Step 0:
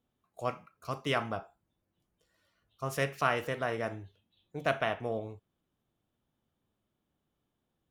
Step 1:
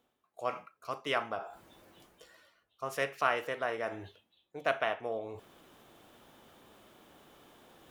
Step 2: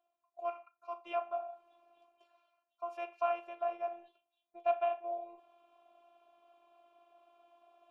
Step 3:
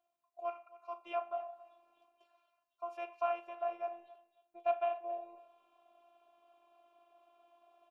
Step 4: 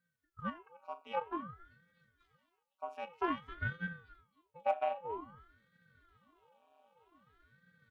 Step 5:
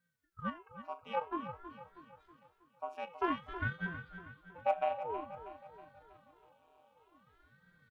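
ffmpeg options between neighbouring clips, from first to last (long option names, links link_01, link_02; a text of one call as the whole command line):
ffmpeg -i in.wav -af "bass=frequency=250:gain=-15,treble=frequency=4000:gain=-4,areverse,acompressor=mode=upward:threshold=-36dB:ratio=2.5,areverse" out.wav
ffmpeg -i in.wav -filter_complex "[0:a]asplit=3[link_01][link_02][link_03];[link_01]bandpass=frequency=730:width_type=q:width=8,volume=0dB[link_04];[link_02]bandpass=frequency=1090:width_type=q:width=8,volume=-6dB[link_05];[link_03]bandpass=frequency=2440:width_type=q:width=8,volume=-9dB[link_06];[link_04][link_05][link_06]amix=inputs=3:normalize=0,afftfilt=real='hypot(re,im)*cos(PI*b)':imag='0':win_size=512:overlap=0.75,volume=6dB" out.wav
ffmpeg -i in.wav -af "aecho=1:1:271|542:0.112|0.0236,volume=-1.5dB" out.wav
ffmpeg -i in.wav -af "aeval=exprs='0.1*(cos(1*acos(clip(val(0)/0.1,-1,1)))-cos(1*PI/2))+0.00178*(cos(7*acos(clip(val(0)/0.1,-1,1)))-cos(7*PI/2))':channel_layout=same,aeval=exprs='val(0)*sin(2*PI*470*n/s+470*0.85/0.52*sin(2*PI*0.52*n/s))':channel_layout=same,volume=3dB" out.wav
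ffmpeg -i in.wav -af "aecho=1:1:320|640|960|1280|1600:0.251|0.123|0.0603|0.0296|0.0145,volume=1dB" out.wav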